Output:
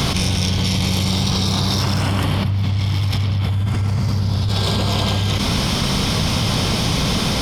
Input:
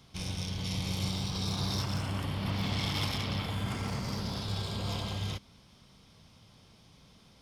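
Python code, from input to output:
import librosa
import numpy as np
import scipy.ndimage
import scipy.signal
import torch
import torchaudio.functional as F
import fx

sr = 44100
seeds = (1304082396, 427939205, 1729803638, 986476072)

y = fx.peak_eq(x, sr, hz=96.0, db=15.0, octaves=1.1, at=(2.44, 4.49))
y = fx.env_flatten(y, sr, amount_pct=100)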